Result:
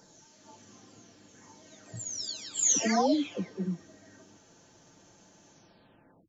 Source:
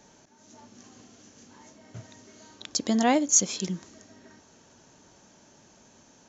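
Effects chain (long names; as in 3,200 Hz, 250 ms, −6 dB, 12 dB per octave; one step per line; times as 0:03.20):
every frequency bin delayed by itself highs early, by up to 821 ms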